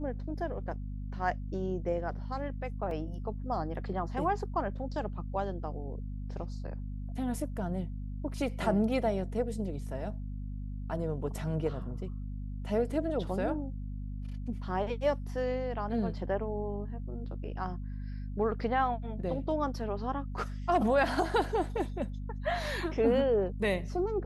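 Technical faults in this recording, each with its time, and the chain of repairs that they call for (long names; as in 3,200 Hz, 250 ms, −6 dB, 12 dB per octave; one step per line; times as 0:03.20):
mains hum 50 Hz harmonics 5 −38 dBFS
0:02.91: drop-out 2.4 ms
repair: hum removal 50 Hz, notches 5
repair the gap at 0:02.91, 2.4 ms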